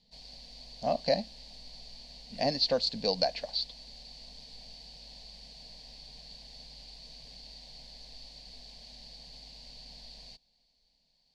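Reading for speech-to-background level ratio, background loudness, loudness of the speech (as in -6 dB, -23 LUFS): 17.0 dB, -47.5 LUFS, -30.5 LUFS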